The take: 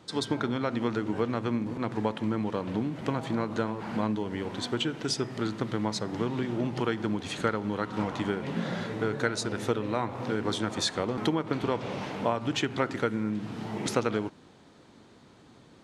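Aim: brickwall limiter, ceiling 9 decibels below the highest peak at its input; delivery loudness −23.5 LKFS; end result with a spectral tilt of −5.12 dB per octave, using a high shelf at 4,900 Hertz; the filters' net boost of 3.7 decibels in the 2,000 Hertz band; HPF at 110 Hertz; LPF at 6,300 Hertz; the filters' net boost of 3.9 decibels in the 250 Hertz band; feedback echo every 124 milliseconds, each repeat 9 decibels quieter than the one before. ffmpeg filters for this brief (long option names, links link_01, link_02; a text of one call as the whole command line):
ffmpeg -i in.wav -af "highpass=110,lowpass=6300,equalizer=frequency=250:width_type=o:gain=5,equalizer=frequency=2000:width_type=o:gain=4,highshelf=frequency=4900:gain=6.5,alimiter=limit=-17dB:level=0:latency=1,aecho=1:1:124|248|372|496:0.355|0.124|0.0435|0.0152,volume=5dB" out.wav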